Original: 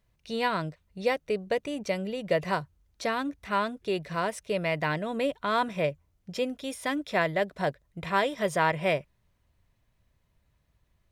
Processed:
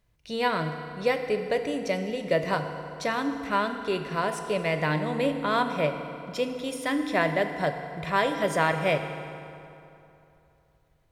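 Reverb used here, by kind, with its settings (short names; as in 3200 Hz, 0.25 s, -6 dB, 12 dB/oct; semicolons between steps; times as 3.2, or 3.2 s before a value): FDN reverb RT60 2.9 s, high-frequency decay 0.7×, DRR 6 dB; gain +1 dB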